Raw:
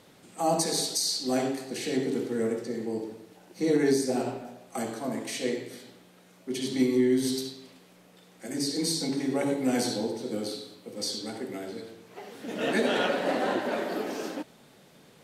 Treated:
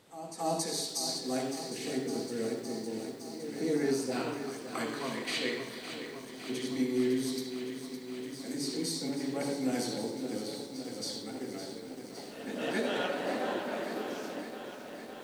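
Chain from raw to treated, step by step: time-frequency box 4.11–5.98 s, 910–5000 Hz +10 dB; pre-echo 275 ms -12 dB; bit-crushed delay 561 ms, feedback 80%, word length 8-bit, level -10 dB; trim -6.5 dB

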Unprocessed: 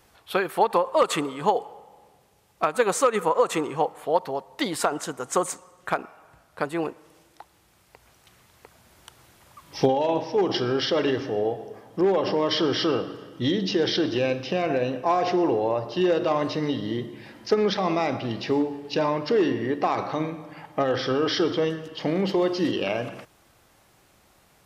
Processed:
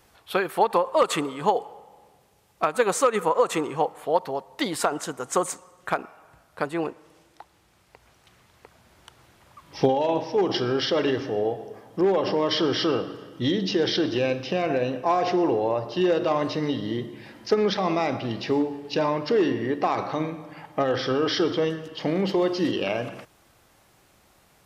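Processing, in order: 6.67–9.84 s: treble shelf 12 kHz -> 5.8 kHz -9 dB

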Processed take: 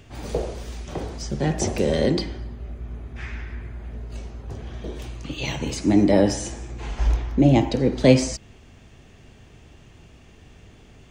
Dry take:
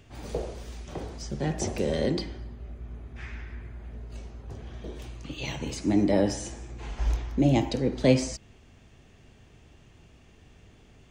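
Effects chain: 7.07–7.80 s: treble shelf 4.2 kHz -7 dB; trim +6 dB

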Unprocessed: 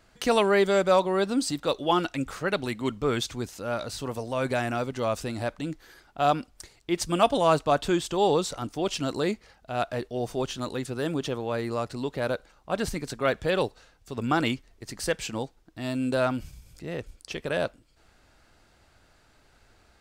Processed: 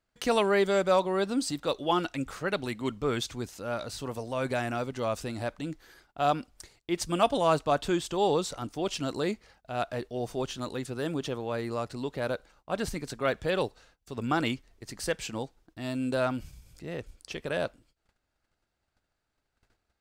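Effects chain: gate -56 dBFS, range -18 dB; trim -3 dB

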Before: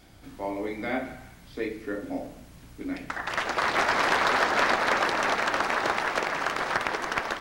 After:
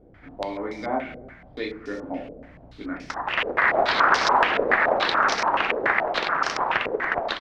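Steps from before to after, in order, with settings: delay 287 ms -18.5 dB; step-sequenced low-pass 7 Hz 480–5500 Hz

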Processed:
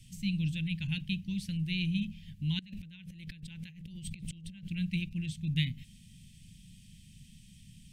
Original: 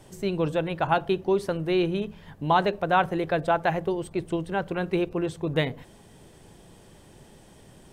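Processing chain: elliptic band-stop 200–2500 Hz, stop band 40 dB; treble shelf 8.2 kHz -5 dB; 2.59–4.68 s: compressor with a negative ratio -46 dBFS, ratio -1

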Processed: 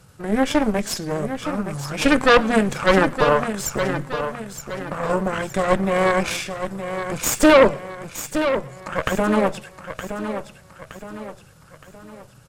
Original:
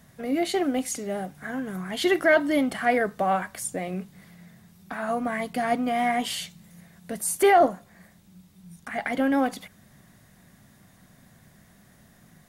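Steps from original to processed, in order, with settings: Chebyshev shaper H 6 -10 dB, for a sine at -7.5 dBFS; pitch shift -4.5 st; on a send: feedback delay 918 ms, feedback 43%, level -9 dB; on the sum: modulated delay 115 ms, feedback 30%, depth 185 cents, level -22.5 dB; trim +4 dB

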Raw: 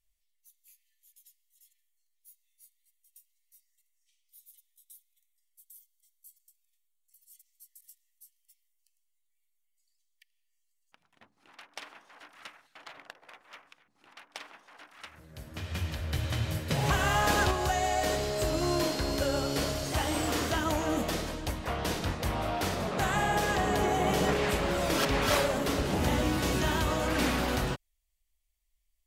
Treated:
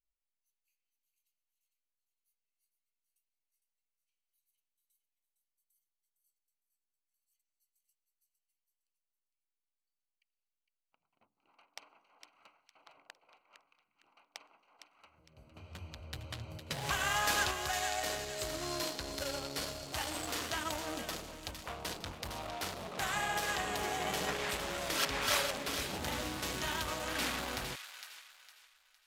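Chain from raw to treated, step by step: local Wiener filter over 25 samples; tilt shelf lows -8 dB, about 870 Hz; feedback echo behind a high-pass 458 ms, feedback 34%, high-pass 1.7 kHz, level -7 dB; trim -6.5 dB

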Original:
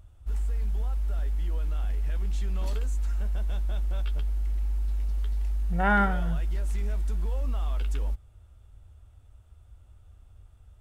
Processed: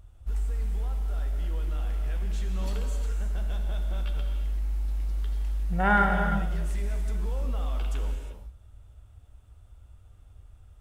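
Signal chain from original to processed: gated-style reverb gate 380 ms flat, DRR 3 dB

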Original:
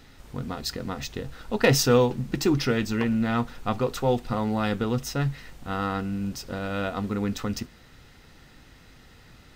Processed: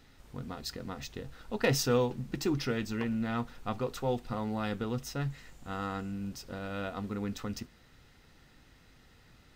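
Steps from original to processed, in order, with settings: 5.30–6.12 s: peaking EQ 7.2 kHz +9 dB 0.24 oct; trim -8 dB

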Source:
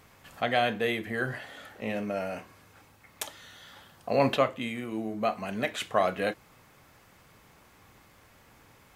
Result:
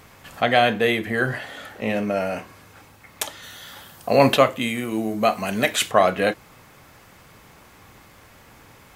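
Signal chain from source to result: 3.42–5.90 s: treble shelf 8.8 kHz -> 4.5 kHz +11 dB; trim +8.5 dB

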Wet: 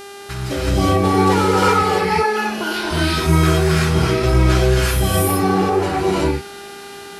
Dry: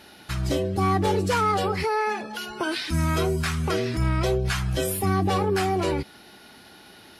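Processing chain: 5.31–5.72 s: band-pass filter 580 Hz, Q 0.62; gated-style reverb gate 400 ms rising, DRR -7.5 dB; mains buzz 400 Hz, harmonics 31, -36 dBFS -5 dB/octave

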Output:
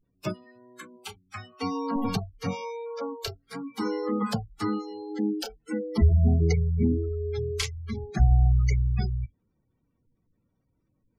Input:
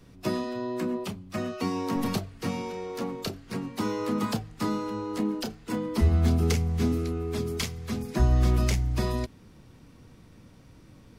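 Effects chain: spectral noise reduction 24 dB; spectral gate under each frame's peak -25 dB strong; trim +2.5 dB

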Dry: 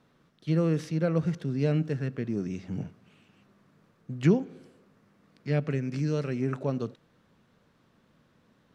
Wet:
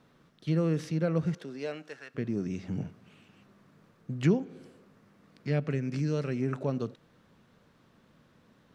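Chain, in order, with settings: in parallel at +0.5 dB: compression, threshold -35 dBFS, peak gain reduction 17.5 dB; 1.34–2.14 s: on the sum: high-pass 310 Hz -> 1.1 kHz 12 dB/octave; trim -4 dB

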